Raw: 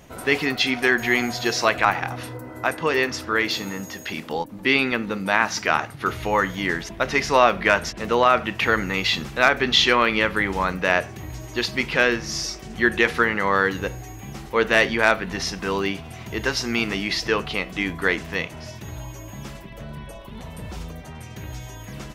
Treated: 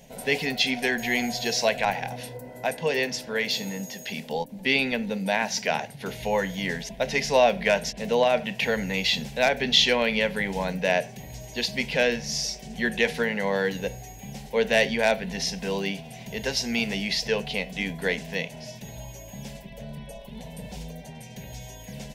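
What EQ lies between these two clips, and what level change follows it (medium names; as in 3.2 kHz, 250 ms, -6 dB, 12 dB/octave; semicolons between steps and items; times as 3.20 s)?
static phaser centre 330 Hz, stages 6; 0.0 dB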